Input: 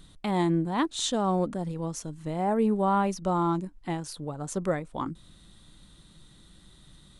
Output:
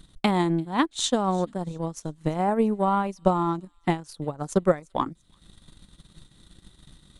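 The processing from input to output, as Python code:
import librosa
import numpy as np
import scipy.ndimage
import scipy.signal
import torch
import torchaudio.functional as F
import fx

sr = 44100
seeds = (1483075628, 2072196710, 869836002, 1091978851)

y = fx.transient(x, sr, attack_db=11, sustain_db=-11)
y = fx.echo_wet_highpass(y, sr, ms=342, feedback_pct=35, hz=3700.0, wet_db=-20.0)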